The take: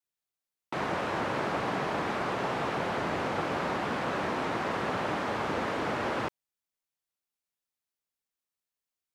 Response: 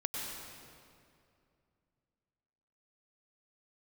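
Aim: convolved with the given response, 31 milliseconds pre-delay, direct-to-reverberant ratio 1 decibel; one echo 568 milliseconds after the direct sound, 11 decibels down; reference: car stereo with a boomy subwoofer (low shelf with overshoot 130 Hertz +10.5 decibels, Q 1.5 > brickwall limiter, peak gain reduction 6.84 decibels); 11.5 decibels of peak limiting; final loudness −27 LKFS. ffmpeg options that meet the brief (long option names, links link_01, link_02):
-filter_complex "[0:a]alimiter=level_in=5.5dB:limit=-24dB:level=0:latency=1,volume=-5.5dB,aecho=1:1:568:0.282,asplit=2[link_01][link_02];[1:a]atrim=start_sample=2205,adelay=31[link_03];[link_02][link_03]afir=irnorm=-1:irlink=0,volume=-4dB[link_04];[link_01][link_04]amix=inputs=2:normalize=0,lowshelf=frequency=130:width_type=q:width=1.5:gain=10.5,volume=11dB,alimiter=limit=-17.5dB:level=0:latency=1"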